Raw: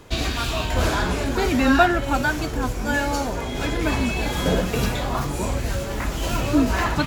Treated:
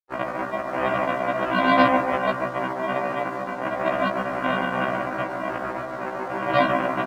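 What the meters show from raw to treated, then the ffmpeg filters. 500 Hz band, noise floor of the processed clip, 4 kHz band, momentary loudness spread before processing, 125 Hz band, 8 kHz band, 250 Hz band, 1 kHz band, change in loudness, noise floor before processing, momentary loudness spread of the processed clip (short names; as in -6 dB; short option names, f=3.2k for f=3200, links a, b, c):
+1.5 dB, -32 dBFS, -7.5 dB, 8 LU, -11.0 dB, under -20 dB, -5.0 dB, +2.5 dB, -1.5 dB, -28 dBFS, 10 LU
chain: -filter_complex "[0:a]aresample=16000,acrusher=samples=37:mix=1:aa=0.000001,aresample=44100,acontrast=89,highpass=740,lowpass=3k,tiltshelf=f=1.4k:g=7,asplit=2[a][b];[b]adelay=144,lowpass=f=1.8k:p=1,volume=-4.5dB,asplit=2[c][d];[d]adelay=144,lowpass=f=1.8k:p=1,volume=0.49,asplit=2[e][f];[f]adelay=144,lowpass=f=1.8k:p=1,volume=0.49,asplit=2[g][h];[h]adelay=144,lowpass=f=1.8k:p=1,volume=0.49,asplit=2[i][j];[j]adelay=144,lowpass=f=1.8k:p=1,volume=0.49,asplit=2[k][l];[l]adelay=144,lowpass=f=1.8k:p=1,volume=0.49[m];[a][c][e][g][i][k][m]amix=inputs=7:normalize=0,areverse,acompressor=mode=upward:threshold=-31dB:ratio=2.5,areverse,crystalizer=i=1.5:c=0,afftfilt=real='re*gte(hypot(re,im),0.0355)':imag='im*gte(hypot(re,im),0.0355)':win_size=1024:overlap=0.75,aeval=exprs='sgn(val(0))*max(abs(val(0))-0.00501,0)':c=same,afftfilt=real='re*1.73*eq(mod(b,3),0)':imag='im*1.73*eq(mod(b,3),0)':win_size=2048:overlap=0.75,volume=3dB"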